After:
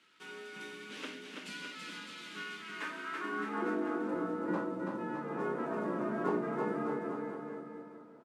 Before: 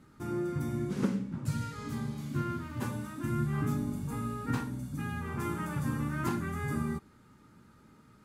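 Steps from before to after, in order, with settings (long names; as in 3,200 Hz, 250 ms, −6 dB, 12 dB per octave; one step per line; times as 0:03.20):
variable-slope delta modulation 64 kbit/s
0:02.64–0:04.13: low shelf with overshoot 130 Hz −11.5 dB, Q 1.5
frequency shifter +64 Hz
band-pass filter sweep 2,900 Hz → 640 Hz, 0:02.57–0:03.74
bouncing-ball delay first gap 330 ms, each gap 0.85×, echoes 5
level +8.5 dB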